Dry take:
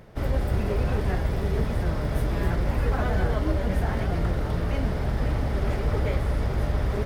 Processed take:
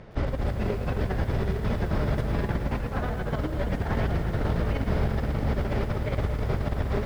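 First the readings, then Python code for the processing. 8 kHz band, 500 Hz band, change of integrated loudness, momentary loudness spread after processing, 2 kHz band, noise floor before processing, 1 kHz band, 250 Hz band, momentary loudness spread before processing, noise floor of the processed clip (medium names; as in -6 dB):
no reading, -1.0 dB, -2.0 dB, 3 LU, -1.0 dB, -28 dBFS, -1.0 dB, 0.0 dB, 2 LU, -32 dBFS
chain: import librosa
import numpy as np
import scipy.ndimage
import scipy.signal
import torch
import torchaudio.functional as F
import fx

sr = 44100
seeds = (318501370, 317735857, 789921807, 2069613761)

y = scipy.signal.sosfilt(scipy.signal.butter(2, 5000.0, 'lowpass', fs=sr, output='sos'), x)
y = fx.over_compress(y, sr, threshold_db=-26.0, ratio=-0.5)
y = fx.echo_crushed(y, sr, ms=111, feedback_pct=80, bits=8, wet_db=-11)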